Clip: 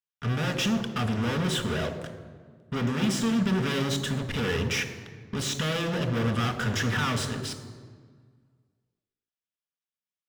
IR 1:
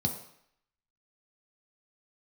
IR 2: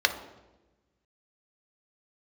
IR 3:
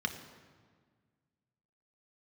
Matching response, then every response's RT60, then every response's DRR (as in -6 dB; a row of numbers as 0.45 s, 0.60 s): 3; 0.70 s, 1.1 s, 1.7 s; 2.5 dB, 6.0 dB, 5.0 dB